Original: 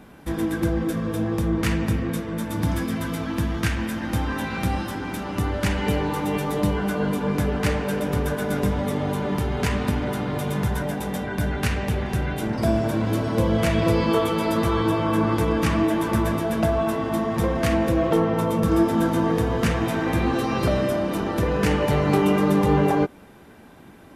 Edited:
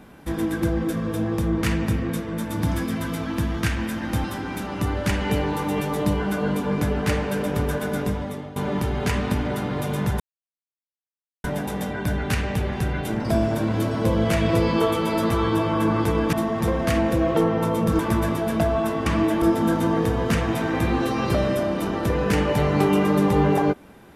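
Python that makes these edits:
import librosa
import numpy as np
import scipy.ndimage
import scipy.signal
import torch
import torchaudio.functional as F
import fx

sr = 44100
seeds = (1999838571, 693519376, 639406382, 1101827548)

y = fx.edit(x, sr, fx.cut(start_s=4.24, length_s=0.57),
    fx.fade_out_to(start_s=8.19, length_s=0.94, curve='qsin', floor_db=-16.5),
    fx.insert_silence(at_s=10.77, length_s=1.24),
    fx.swap(start_s=15.66, length_s=0.36, other_s=17.09, other_length_s=1.66), tone=tone)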